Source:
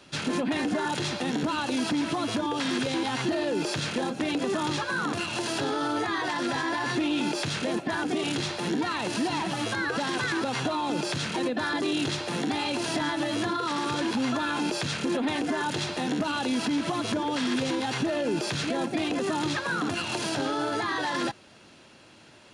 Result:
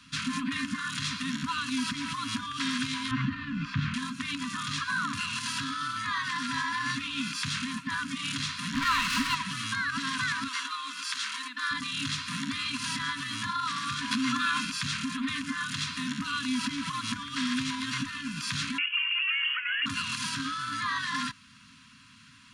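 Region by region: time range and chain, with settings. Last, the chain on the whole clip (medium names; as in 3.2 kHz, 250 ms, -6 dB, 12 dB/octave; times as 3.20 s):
3.11–3.94 s: low-pass 2.3 kHz + bass shelf 270 Hz +11.5 dB
8.74–9.35 s: band-stop 1.7 kHz, Q 14 + overdrive pedal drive 27 dB, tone 2.4 kHz, clips at -16.5 dBFS
10.48–11.71 s: high-pass 420 Hz 24 dB/octave + band-stop 2.5 kHz, Q 22
14.11–14.65 s: high-pass 140 Hz + hum notches 50/100/150/200/250/300/350 Hz + level flattener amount 100%
18.78–19.86 s: frequency inversion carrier 3.1 kHz + high-pass 1.4 kHz
whole clip: FFT band-reject 290–960 Hz; dynamic bell 150 Hz, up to -4 dB, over -44 dBFS, Q 0.84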